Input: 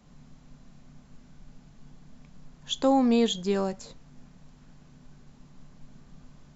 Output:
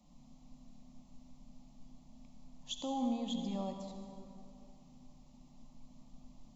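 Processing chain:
0:02.93–0:03.88: low-pass filter 2,100 Hz 6 dB per octave
brickwall limiter −22.5 dBFS, peak gain reduction 10.5 dB
phaser with its sweep stopped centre 420 Hz, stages 6
on a send: convolution reverb RT60 2.6 s, pre-delay 53 ms, DRR 4 dB
on the sum: level −5.5 dB

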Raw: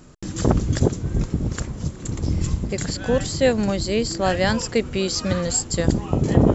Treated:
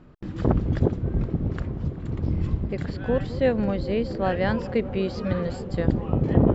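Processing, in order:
high-frequency loss of the air 380 metres
delay with a low-pass on its return 210 ms, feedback 85%, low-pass 730 Hz, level −14 dB
level −2.5 dB

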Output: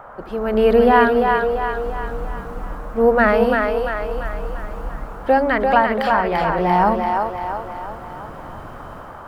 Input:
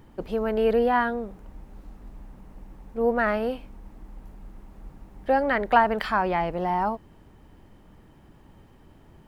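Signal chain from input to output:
automatic gain control gain up to 14.5 dB
noise in a band 480–1,400 Hz −38 dBFS
on a send: echo with a time of its own for lows and highs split 330 Hz, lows 82 ms, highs 342 ms, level −4 dB
on the sum: level −2 dB

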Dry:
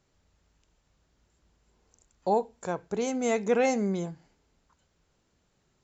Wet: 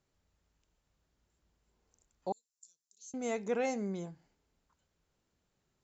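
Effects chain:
0:02.32–0:03.14: inverse Chebyshev high-pass filter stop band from 2,100 Hz, stop band 50 dB
level −8.5 dB

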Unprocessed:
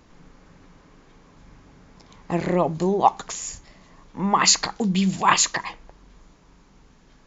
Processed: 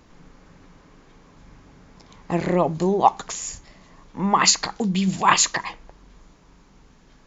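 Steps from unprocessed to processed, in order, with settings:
0:04.50–0:05.08: downward compressor 1.5 to 1, threshold −23 dBFS, peak gain reduction 4 dB
level +1 dB

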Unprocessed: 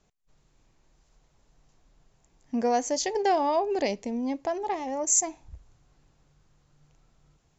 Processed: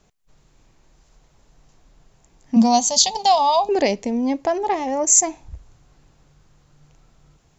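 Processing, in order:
0:02.56–0:03.69: drawn EQ curve 140 Hz 0 dB, 220 Hz +13 dB, 320 Hz −26 dB, 740 Hz +1 dB, 1,100 Hz +3 dB, 1,600 Hz −19 dB, 3,800 Hz +14 dB, 5,400 Hz +5 dB, 11,000 Hz +10 dB
level +8.5 dB

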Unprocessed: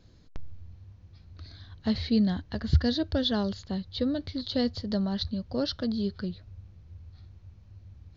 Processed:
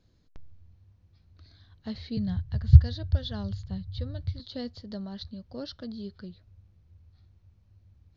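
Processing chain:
0:02.17–0:04.40: low shelf with overshoot 180 Hz +14 dB, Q 3
level −9 dB

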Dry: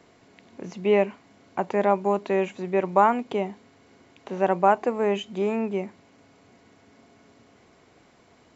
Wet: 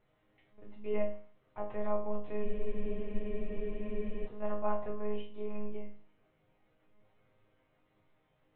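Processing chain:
one-pitch LPC vocoder at 8 kHz 210 Hz
resonators tuned to a chord G#2 major, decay 0.44 s
frozen spectrum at 0:02.47, 1.78 s

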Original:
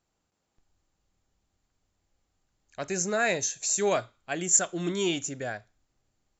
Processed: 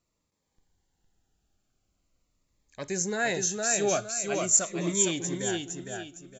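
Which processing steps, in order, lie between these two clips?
repeating echo 460 ms, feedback 33%, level −4 dB
phaser whose notches keep moving one way falling 0.43 Hz

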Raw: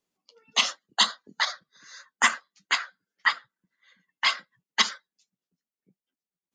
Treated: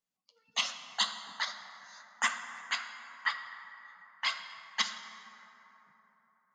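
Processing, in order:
parametric band 360 Hz −13 dB 0.57 octaves
dense smooth reverb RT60 3.8 s, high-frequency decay 0.4×, DRR 7.5 dB
level −8.5 dB

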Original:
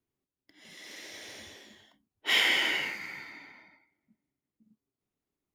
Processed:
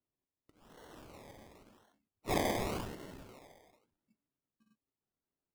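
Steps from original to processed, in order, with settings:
sample-and-hold swept by an LFO 25×, swing 60% 0.91 Hz
level −7.5 dB

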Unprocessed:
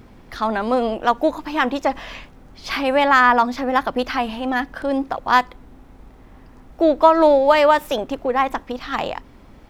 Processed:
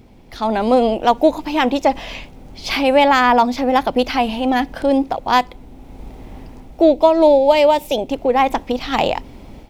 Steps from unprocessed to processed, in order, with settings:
flat-topped bell 1,400 Hz −8 dB 1 octave, from 0:06.89 −15.5 dB, from 0:08.09 −8 dB
automatic gain control gain up to 11.5 dB
level −1 dB

